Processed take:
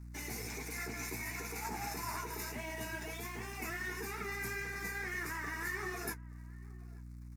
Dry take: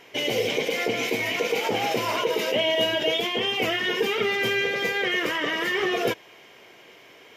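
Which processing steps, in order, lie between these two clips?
parametric band 9,700 Hz +11.5 dB 1.3 octaves
in parallel at +2 dB: downward compressor, threshold −33 dBFS, peak gain reduction 14.5 dB
on the sum: tuned comb filter 860 Hz, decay 0.16 s, harmonics all, mix 70%
dead-zone distortion −47 dBFS
flanger 1.5 Hz, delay 5.9 ms, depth 7.6 ms, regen −47%
mains hum 60 Hz, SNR 11 dB
phaser with its sweep stopped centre 1,300 Hz, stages 4
slap from a distant wall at 150 metres, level −22 dB
level +1 dB

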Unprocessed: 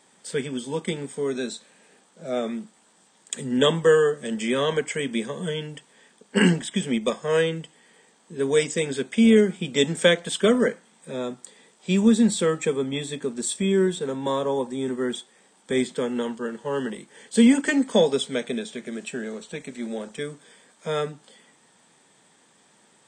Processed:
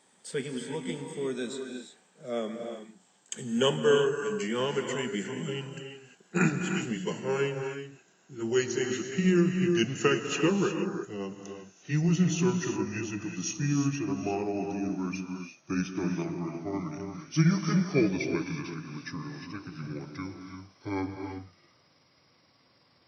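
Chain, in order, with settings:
pitch glide at a constant tempo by −8.5 semitones starting unshifted
reverb whose tail is shaped and stops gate 380 ms rising, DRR 5 dB
level −5.5 dB

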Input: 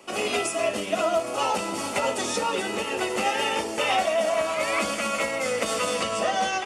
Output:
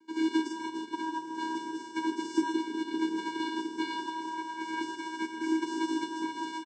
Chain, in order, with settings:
channel vocoder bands 8, square 321 Hz
double-tracking delay 42 ms −9 dB
single-tap delay 160 ms −8 dB
expander for the loud parts 1.5 to 1, over −43 dBFS

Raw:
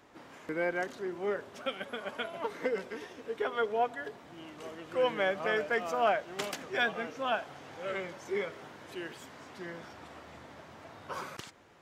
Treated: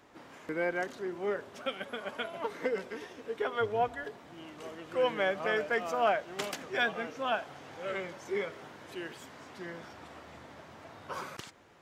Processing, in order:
0:03.60–0:04.05: sub-octave generator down 2 octaves, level −6 dB

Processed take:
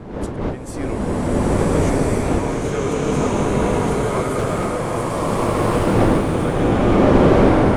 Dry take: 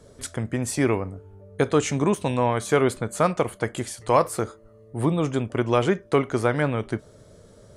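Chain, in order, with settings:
wind on the microphone 420 Hz −20 dBFS
0:04.38–0:05.02: leveller curve on the samples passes 5
slow-attack reverb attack 1,420 ms, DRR −10 dB
level −9 dB

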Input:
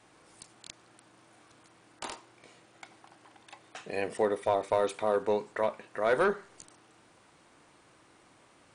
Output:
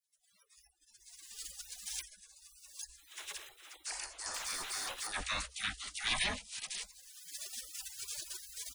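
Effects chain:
camcorder AGC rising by 32 dB per second
0:02.98–0:05.12: gain on a spectral selection 340–4,200 Hz −21 dB
on a send: repeating echo 510 ms, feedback 31%, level −15.5 dB
on the sum: gate on every frequency bin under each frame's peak −30 dB weak
0:04.34–0:05.07: power curve on the samples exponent 0.5
all-pass dispersion lows, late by 50 ms, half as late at 880 Hz
in parallel at −2 dB: output level in coarse steps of 21 dB
on the sum: frequency shifter −65 Hz
noise reduction from a noise print of the clip's start 13 dB
level +13.5 dB

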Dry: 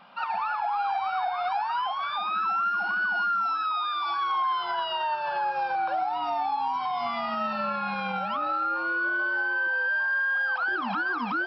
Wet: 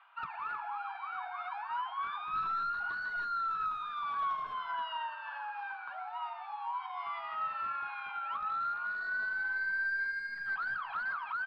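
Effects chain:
high-pass filter 1,100 Hz 24 dB per octave
high-shelf EQ 5,000 Hz −5.5 dB
reversed playback
upward compression, threshold −37 dBFS
reversed playback
wave folding −26 dBFS
high-frequency loss of the air 440 metres
repeating echo 164 ms, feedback 51%, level −15 dB
on a send at −7 dB: convolution reverb, pre-delay 3 ms
on the sum: level −3 dB

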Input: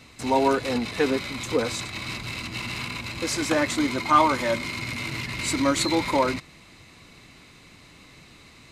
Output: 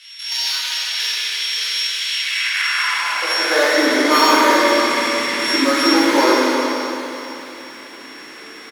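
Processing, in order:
samples sorted by size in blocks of 8 samples
in parallel at 0 dB: downward compressor 4 to 1, threshold −36 dBFS, peak gain reduction 19 dB
on the sum: low-pass filter 9,100 Hz 12 dB per octave
hard clipping −15 dBFS, distortion −15 dB
bass and treble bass −10 dB, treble 0 dB
slap from a distant wall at 59 metres, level −14 dB
high-pass filter sweep 3,200 Hz → 310 Hz, 0:02.06–0:03.80
parametric band 1,700 Hz +9.5 dB 0.88 octaves
convolution reverb RT60 3.2 s, pre-delay 14 ms, DRR −7.5 dB
feedback echo at a low word length 144 ms, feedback 55%, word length 6 bits, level −14.5 dB
level −2.5 dB

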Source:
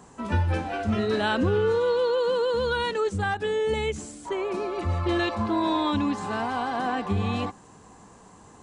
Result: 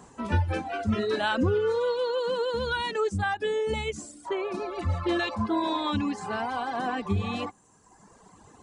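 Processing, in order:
reverb reduction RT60 1.3 s

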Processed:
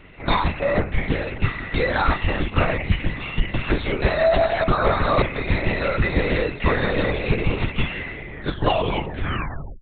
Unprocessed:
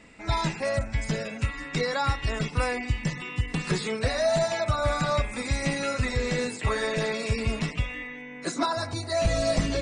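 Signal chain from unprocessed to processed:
turntable brake at the end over 1.52 s
linear-prediction vocoder at 8 kHz whisper
level +6.5 dB

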